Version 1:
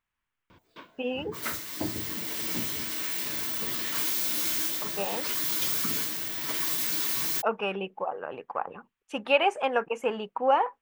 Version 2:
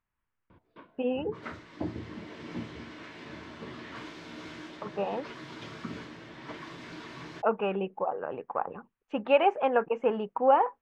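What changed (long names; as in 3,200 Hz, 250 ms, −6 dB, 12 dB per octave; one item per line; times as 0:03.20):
speech +4.0 dB
master: add head-to-tape spacing loss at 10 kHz 41 dB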